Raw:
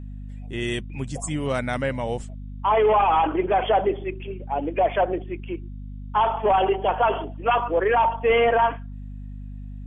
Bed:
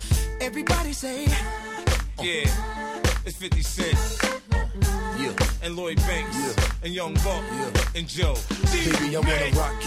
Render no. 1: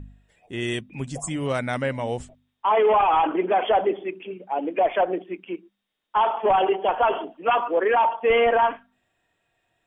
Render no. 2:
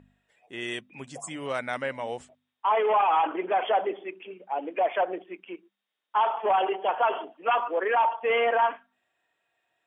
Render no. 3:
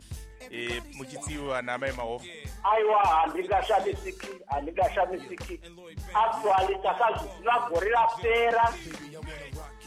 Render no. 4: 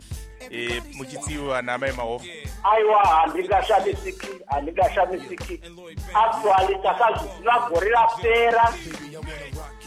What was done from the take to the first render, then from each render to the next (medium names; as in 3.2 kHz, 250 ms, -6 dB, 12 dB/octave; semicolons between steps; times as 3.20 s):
de-hum 50 Hz, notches 5
high-pass 800 Hz 6 dB/octave; treble shelf 3.4 kHz -7.5 dB
add bed -18 dB
trim +5.5 dB